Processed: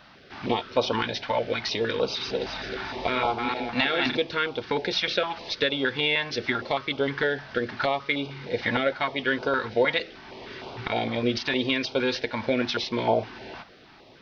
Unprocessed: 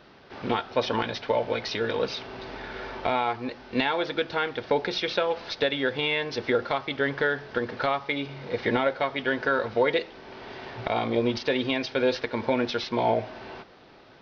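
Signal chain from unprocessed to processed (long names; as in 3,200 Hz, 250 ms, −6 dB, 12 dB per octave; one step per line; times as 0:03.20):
0:02.00–0:04.17: feedback delay that plays each chunk backwards 193 ms, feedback 57%, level −3 dB
low-shelf EQ 450 Hz −3.5 dB
notch on a step sequencer 6.5 Hz 400–1,800 Hz
level +4 dB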